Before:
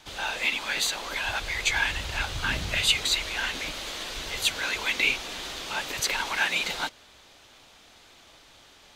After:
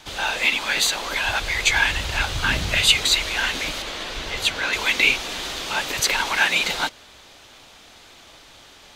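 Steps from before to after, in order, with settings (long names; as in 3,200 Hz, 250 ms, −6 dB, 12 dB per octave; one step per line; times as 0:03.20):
0:03.82–0:04.73: high-shelf EQ 5,700 Hz −10.5 dB
level +6.5 dB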